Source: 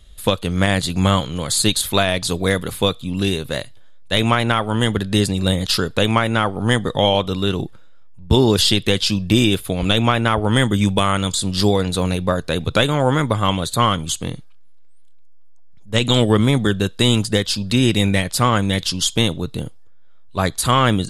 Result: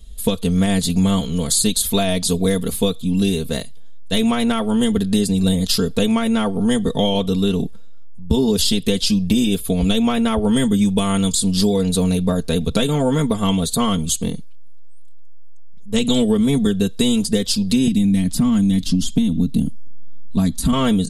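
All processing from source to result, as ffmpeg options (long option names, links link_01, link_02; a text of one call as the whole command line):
ffmpeg -i in.wav -filter_complex "[0:a]asettb=1/sr,asplit=3[link_01][link_02][link_03];[link_01]atrim=end=17.874[link_04];[link_02]atrim=start=17.87:end=20.73,asetpts=PTS-STARTPTS,afade=type=in:duration=0.004:curve=qsin,afade=type=out:start_time=2.856:duration=0.004:curve=qsin,lowshelf=frequency=340:width_type=q:width=3:gain=7,acrossover=split=97|2900[link_05][link_06][link_07];[link_05]acompressor=threshold=-25dB:ratio=4[link_08];[link_06]acompressor=threshold=-16dB:ratio=4[link_09];[link_07]acompressor=threshold=-31dB:ratio=4[link_10];[link_08][link_09][link_10]amix=inputs=3:normalize=0[link_11];[link_03]atrim=start=20.726[link_12];[link_04][link_11]acrossfade=duration=0.004:curve1=hsin:curve2=qsin[link_13];[link_13][link_12]acrossfade=duration=0.004:curve1=qsin:curve2=hsin,equalizer=frequency=1500:width=0.46:gain=-13.5,aecho=1:1:4.4:0.93,acompressor=threshold=-17dB:ratio=6,volume=4dB" out.wav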